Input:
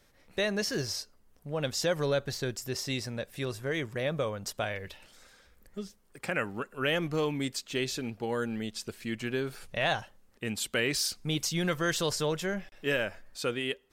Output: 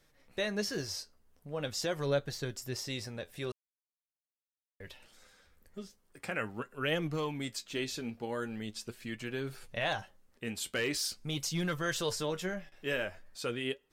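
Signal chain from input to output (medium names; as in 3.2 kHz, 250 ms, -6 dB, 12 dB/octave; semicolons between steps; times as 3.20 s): flange 0.43 Hz, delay 6 ms, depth 7 ms, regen +56%; 3.52–4.80 s: mute; 9.92–11.74 s: overload inside the chain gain 25.5 dB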